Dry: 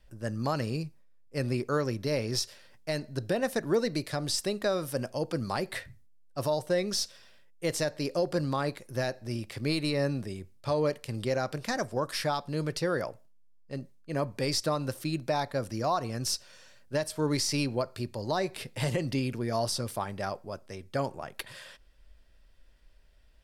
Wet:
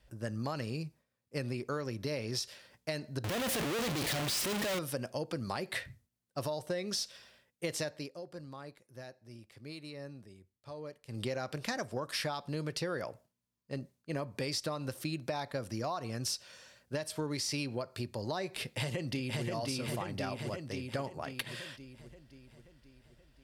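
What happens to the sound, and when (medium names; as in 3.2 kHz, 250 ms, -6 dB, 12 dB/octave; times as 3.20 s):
3.24–4.79 s: one-bit comparator
7.87–11.27 s: dip -17 dB, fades 0.22 s
18.62–19.43 s: echo throw 530 ms, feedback 55%, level -1 dB
whole clip: high-pass 44 Hz; compression, threshold -33 dBFS; dynamic bell 2.9 kHz, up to +4 dB, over -52 dBFS, Q 1.1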